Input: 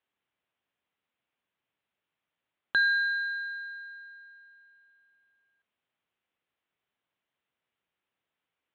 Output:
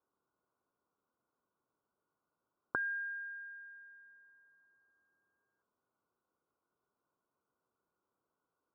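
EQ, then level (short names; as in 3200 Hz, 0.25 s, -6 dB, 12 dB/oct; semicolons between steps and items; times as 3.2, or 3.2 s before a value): rippled Chebyshev low-pass 1500 Hz, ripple 6 dB; +6.5 dB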